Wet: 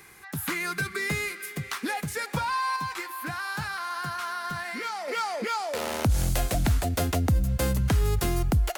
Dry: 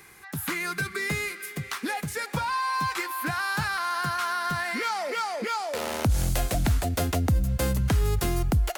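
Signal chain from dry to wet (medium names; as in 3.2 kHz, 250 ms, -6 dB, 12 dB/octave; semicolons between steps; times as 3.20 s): 2.76–5.08 s: flange 1.5 Hz, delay 6.9 ms, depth 3.3 ms, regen -83%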